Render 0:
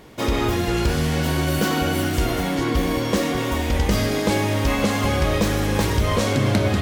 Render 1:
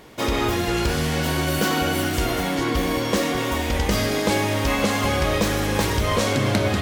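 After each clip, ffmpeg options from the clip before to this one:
ffmpeg -i in.wav -af "lowshelf=frequency=340:gain=-5,volume=1.5dB" out.wav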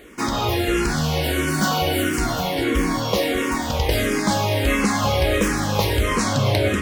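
ffmpeg -i in.wav -filter_complex "[0:a]asplit=2[link_01][link_02];[link_02]afreqshift=-1.5[link_03];[link_01][link_03]amix=inputs=2:normalize=1,volume=4dB" out.wav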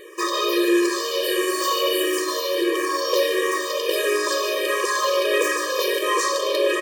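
ffmpeg -i in.wav -af "asoftclip=type=tanh:threshold=-16.5dB,aecho=1:1:149:0.335,afftfilt=real='re*eq(mod(floor(b*sr/1024/320),2),1)':imag='im*eq(mod(floor(b*sr/1024/320),2),1)':win_size=1024:overlap=0.75,volume=5.5dB" out.wav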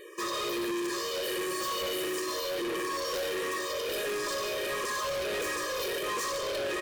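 ffmpeg -i in.wav -af "volume=25dB,asoftclip=hard,volume=-25dB,volume=-5.5dB" out.wav

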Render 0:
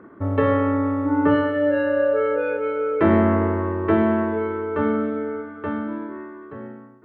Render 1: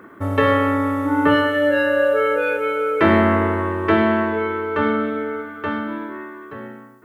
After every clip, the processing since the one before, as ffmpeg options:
ffmpeg -i in.wav -af "crystalizer=i=9.5:c=0" out.wav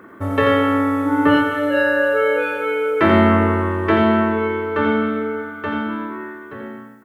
ffmpeg -i in.wav -af "aecho=1:1:86|258:0.562|0.133" out.wav

